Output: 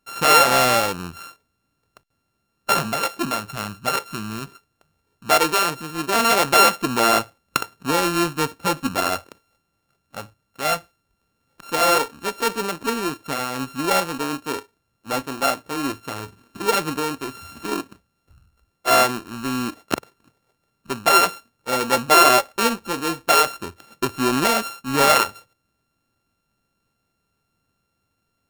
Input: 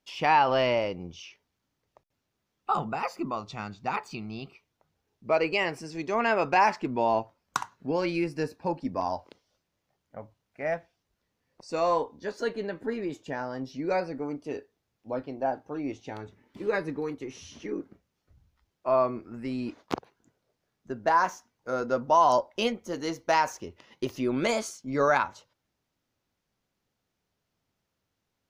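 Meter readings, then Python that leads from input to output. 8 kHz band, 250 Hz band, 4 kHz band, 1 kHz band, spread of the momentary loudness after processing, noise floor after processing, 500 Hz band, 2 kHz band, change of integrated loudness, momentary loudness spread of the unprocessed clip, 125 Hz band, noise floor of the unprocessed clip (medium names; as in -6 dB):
+20.0 dB, +6.5 dB, +16.0 dB, +7.0 dB, 17 LU, -74 dBFS, +4.5 dB, +9.5 dB, +8.5 dB, 16 LU, +6.5 dB, -81 dBFS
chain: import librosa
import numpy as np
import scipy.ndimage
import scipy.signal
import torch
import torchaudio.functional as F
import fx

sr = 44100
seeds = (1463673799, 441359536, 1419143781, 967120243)

y = np.r_[np.sort(x[:len(x) // 32 * 32].reshape(-1, 32), axis=1).ravel(), x[len(x) // 32 * 32:]]
y = F.gain(torch.from_numpy(y), 7.5).numpy()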